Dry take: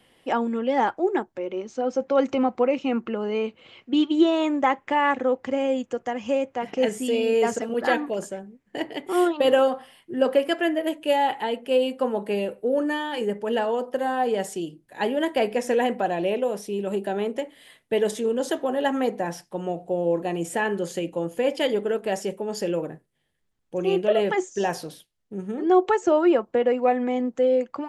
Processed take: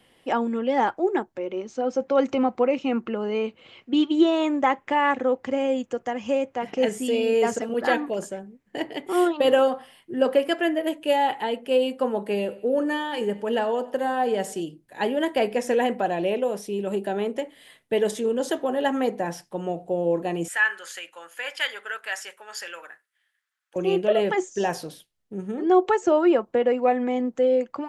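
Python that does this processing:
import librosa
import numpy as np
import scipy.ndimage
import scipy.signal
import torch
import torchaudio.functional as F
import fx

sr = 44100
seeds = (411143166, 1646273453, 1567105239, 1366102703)

y = fx.echo_feedback(x, sr, ms=94, feedback_pct=48, wet_db=-20, at=(12.19, 14.64))
y = fx.highpass_res(y, sr, hz=1500.0, q=3.0, at=(20.48, 23.76))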